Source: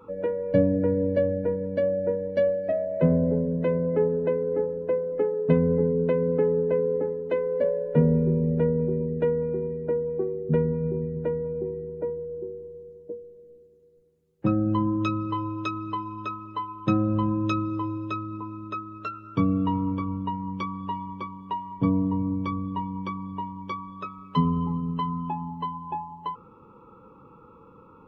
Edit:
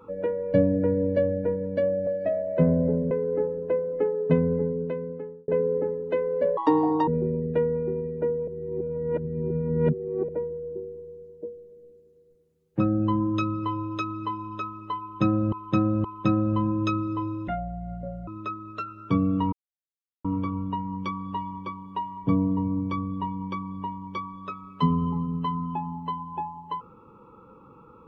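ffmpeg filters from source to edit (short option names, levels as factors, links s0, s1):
-filter_complex "[0:a]asplit=13[s0][s1][s2][s3][s4][s5][s6][s7][s8][s9][s10][s11][s12];[s0]atrim=end=2.072[s13];[s1]atrim=start=2.498:end=3.542[s14];[s2]atrim=start=4.298:end=6.67,asetpts=PTS-STARTPTS,afade=t=out:st=1.132:d=1.24[s15];[s3]atrim=start=6.67:end=7.764,asetpts=PTS-STARTPTS,afade=t=in:d=0.004:c=hsin[s16];[s4]atrim=start=7.76:end=8.74,asetpts=PTS-STARTPTS,asetrate=85554,aresample=44100,atrim=end_sample=22277,asetpts=PTS-STARTPTS[s17];[s5]atrim=start=8.736:end=10.142[s18];[s6]atrim=start=10.138:end=11.952,asetpts=PTS-STARTPTS,areverse[s19];[s7]atrim=start=11.948:end=17.192[s20];[s8]atrim=start=16.668:end=17.192[s21];[s9]atrim=start=16.668:end=18.104[s22];[s10]atrim=start=18.1:end=18.54,asetpts=PTS-STARTPTS,asetrate=24255,aresample=44100[s23];[s11]atrim=start=18.536:end=19.79,asetpts=PTS-STARTPTS,afade=t=out:st=1.25:d=0.004:c=hsin,apad=pad_dur=0.72[s24];[s12]atrim=start=19.79,asetpts=PTS-STARTPTS,afade=t=in:d=0.004:c=hsin[s25];[s13][s14]acrossfade=d=0.004:c1=hsin:c2=hsin[s26];[s15][s16]concat=n=2:v=0:a=1[s27];[s26][s27]acrossfade=d=0.004:c1=hsin:c2=hsin[s28];[s28][s17]acrossfade=d=0.004:c1=hsin:c2=hsin[s29];[s29][s18]acrossfade=d=0.004:c1=hsin:c2=hsin[s30];[s30][s19]acrossfade=d=0.004:c1=hsin:c2=hsin[s31];[s31][s20]acrossfade=d=0.004:c1=hsin:c2=hsin[s32];[s32][s21]acrossfade=d=0.004:c1=hsin:c2=hsin[s33];[s33][s22]acrossfade=d=0.004:c1=hsin:c2=hsin[s34];[s34][s23]acrossfade=d=0.004:c1=hsin:c2=hsin[s35];[s24][s25]concat=n=2:v=0:a=1[s36];[s35][s36]acrossfade=d=0.004:c1=hsin:c2=hsin"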